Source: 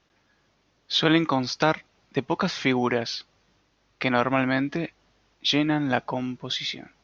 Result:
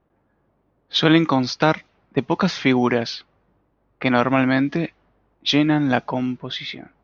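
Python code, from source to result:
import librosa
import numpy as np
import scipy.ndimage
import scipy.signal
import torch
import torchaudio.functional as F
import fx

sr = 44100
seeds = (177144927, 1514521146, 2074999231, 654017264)

y = fx.dynamic_eq(x, sr, hz=200.0, q=0.98, threshold_db=-33.0, ratio=4.0, max_db=4)
y = fx.env_lowpass(y, sr, base_hz=890.0, full_db=-18.5)
y = y * librosa.db_to_amplitude(3.5)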